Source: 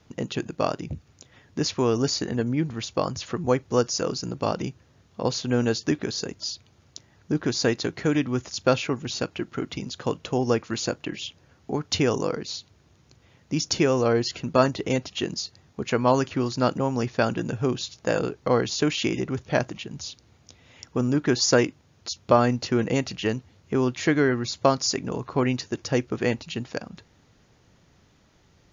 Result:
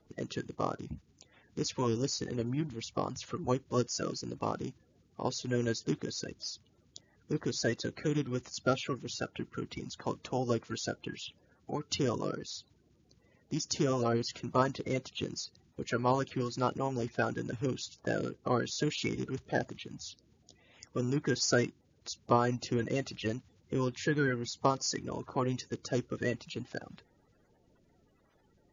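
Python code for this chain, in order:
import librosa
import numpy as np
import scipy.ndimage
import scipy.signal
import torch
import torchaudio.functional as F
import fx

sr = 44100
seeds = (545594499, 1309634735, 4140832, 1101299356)

y = fx.spec_quant(x, sr, step_db=30)
y = F.gain(torch.from_numpy(y), -8.0).numpy()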